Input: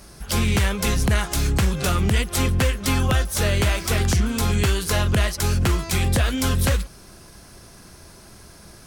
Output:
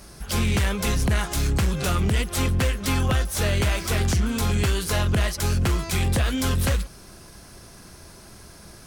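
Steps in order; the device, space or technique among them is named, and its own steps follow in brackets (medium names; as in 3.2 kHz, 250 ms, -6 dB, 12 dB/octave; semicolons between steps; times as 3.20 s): saturation between pre-emphasis and de-emphasis (treble shelf 6.4 kHz +12 dB; saturation -14.5 dBFS, distortion -15 dB; treble shelf 6.4 kHz -12 dB)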